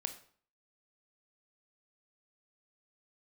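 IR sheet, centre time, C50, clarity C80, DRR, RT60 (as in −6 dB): 9 ms, 12.0 dB, 15.5 dB, 7.5 dB, 0.50 s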